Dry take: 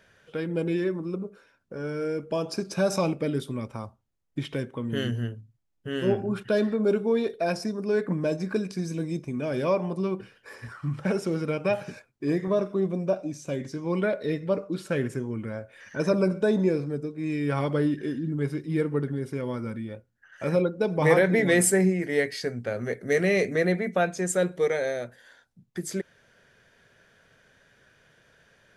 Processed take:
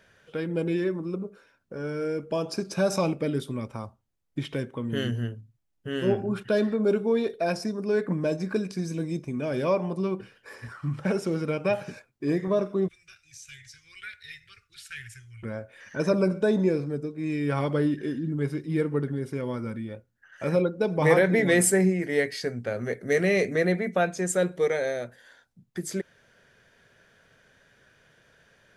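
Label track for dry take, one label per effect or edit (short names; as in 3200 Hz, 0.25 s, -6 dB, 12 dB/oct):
12.880000	15.430000	inverse Chebyshev band-stop 170–980 Hz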